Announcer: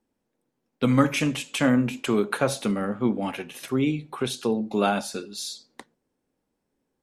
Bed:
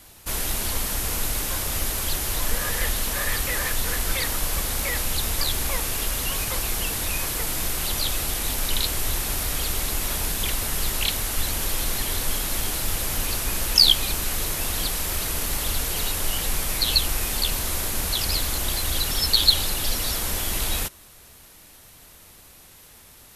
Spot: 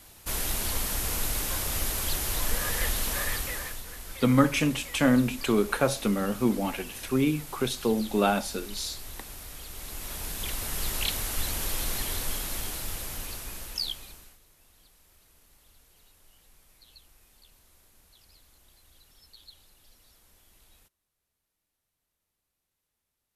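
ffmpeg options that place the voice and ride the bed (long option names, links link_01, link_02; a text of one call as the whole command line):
ffmpeg -i stem1.wav -i stem2.wav -filter_complex "[0:a]adelay=3400,volume=-1dB[link_01];[1:a]volume=8dB,afade=type=out:start_time=3.15:duration=0.69:silence=0.223872,afade=type=in:start_time=9.69:duration=1.28:silence=0.266073,afade=type=out:start_time=11.98:duration=2.41:silence=0.0334965[link_02];[link_01][link_02]amix=inputs=2:normalize=0" out.wav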